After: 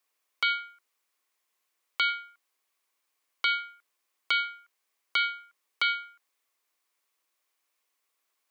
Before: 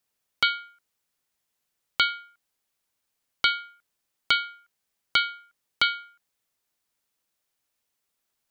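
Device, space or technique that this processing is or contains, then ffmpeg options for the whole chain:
laptop speaker: -af "highpass=frequency=290:width=0.5412,highpass=frequency=290:width=1.3066,equalizer=frequency=1100:width_type=o:width=0.22:gain=9,equalizer=frequency=2200:width_type=o:width=0.57:gain=5,alimiter=limit=-15dB:level=0:latency=1:release=67"

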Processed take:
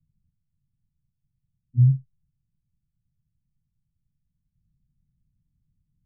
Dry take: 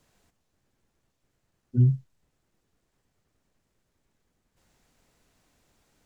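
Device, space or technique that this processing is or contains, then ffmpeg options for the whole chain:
the neighbour's flat through the wall: -af "lowpass=frequency=160:width=0.5412,lowpass=frequency=160:width=1.3066,equalizer=frequency=150:width_type=o:width=0.76:gain=5.5"

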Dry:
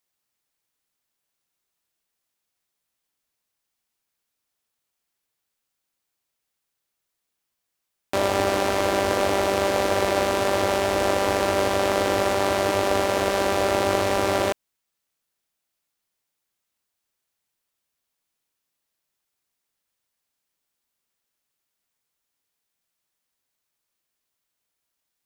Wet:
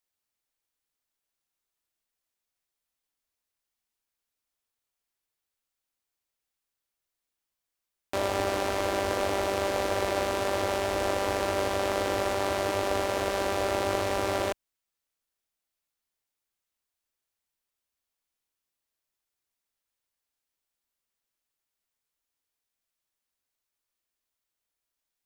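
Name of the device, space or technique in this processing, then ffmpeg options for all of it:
low shelf boost with a cut just above: -af "lowshelf=frequency=68:gain=7,equalizer=frequency=160:width_type=o:width=0.78:gain=-5.5,volume=-6dB"

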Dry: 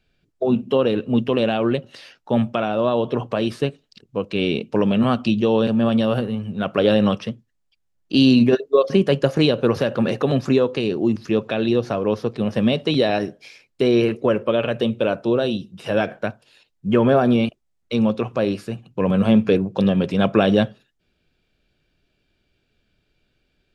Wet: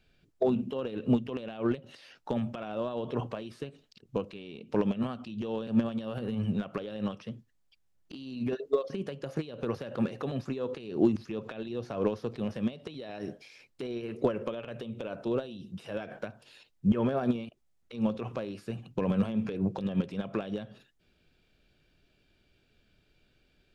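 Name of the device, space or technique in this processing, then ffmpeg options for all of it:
de-esser from a sidechain: -filter_complex "[0:a]asplit=2[link_01][link_02];[link_02]highpass=4500,apad=whole_len=1047141[link_03];[link_01][link_03]sidechaincompress=threshold=-56dB:ratio=8:attack=2.7:release=84"

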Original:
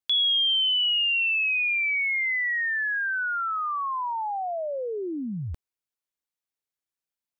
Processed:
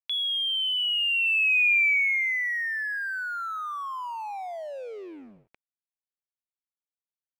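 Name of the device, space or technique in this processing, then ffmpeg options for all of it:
pocket radio on a weak battery: -filter_complex "[0:a]asettb=1/sr,asplit=3[link_01][link_02][link_03];[link_01]atrim=end=2.124[link_04];[link_02]atrim=start=2.12:end=2.99,asetpts=PTS-STARTPTS,afade=type=in:duration=0.004:curve=qsin,afade=type=out:start_time=0.866:duration=0.004:curve=qsin,highpass=frequency=140:width=0.5412,highpass=frequency=140:width=1.3066[link_05];[link_03]atrim=start=2.986[link_06];[link_04][link_05]acrossfade=duration=0.004:curve1=hsin:curve2=qsin[link_07];[link_07][link_06]acrossfade=duration=0.004:curve1=qsin:curve2=hsin,highpass=370,lowpass=3600,aecho=1:1:160|320|480|640:0.1|0.048|0.023|0.0111,aeval=exprs='sgn(val(0))*max(abs(val(0))-0.00398,0)':channel_layout=same,equalizer=frequency=2400:width_type=o:width=0.44:gain=10,volume=-4.5dB"

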